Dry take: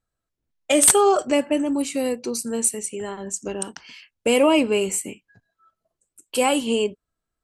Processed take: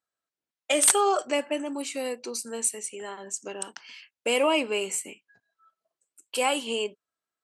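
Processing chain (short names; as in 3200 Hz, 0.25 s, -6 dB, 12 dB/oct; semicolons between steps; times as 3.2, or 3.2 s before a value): weighting filter A; gain -3.5 dB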